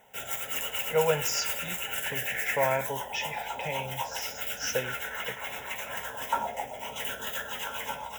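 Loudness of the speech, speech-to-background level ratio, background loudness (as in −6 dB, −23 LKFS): −32.0 LKFS, 0.5 dB, −32.5 LKFS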